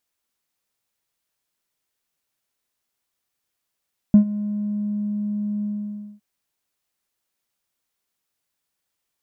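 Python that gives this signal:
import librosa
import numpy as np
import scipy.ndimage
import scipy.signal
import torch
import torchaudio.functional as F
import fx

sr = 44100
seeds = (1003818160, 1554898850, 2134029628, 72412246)

y = fx.sub_voice(sr, note=56, wave='square', cutoff_hz=210.0, q=1.7, env_oct=0.5, env_s=0.98, attack_ms=1.2, decay_s=0.1, sustain_db=-18.0, release_s=0.57, note_s=1.49, slope=12)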